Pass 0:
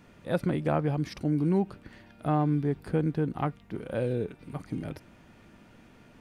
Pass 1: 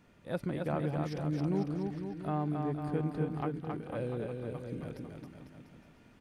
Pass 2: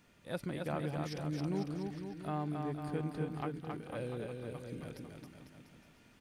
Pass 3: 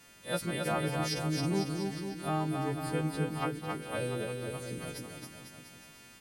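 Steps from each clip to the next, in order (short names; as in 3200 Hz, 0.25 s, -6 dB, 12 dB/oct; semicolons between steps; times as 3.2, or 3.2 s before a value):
bouncing-ball echo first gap 0.27 s, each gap 0.85×, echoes 5; gain -7.5 dB
high shelf 2100 Hz +9.5 dB; gain -4.5 dB
frequency quantiser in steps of 2 st; gain +6 dB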